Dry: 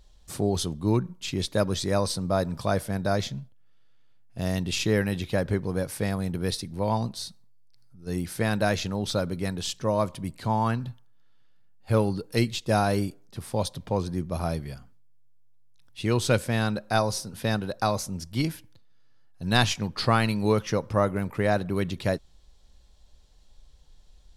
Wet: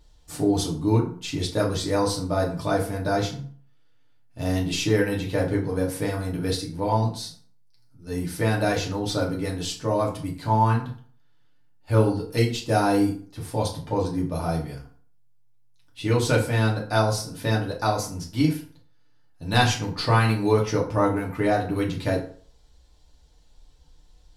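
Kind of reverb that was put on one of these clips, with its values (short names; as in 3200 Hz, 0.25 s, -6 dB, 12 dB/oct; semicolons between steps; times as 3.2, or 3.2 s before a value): FDN reverb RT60 0.48 s, low-frequency decay 0.95×, high-frequency decay 0.65×, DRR -3.5 dB; gain -3 dB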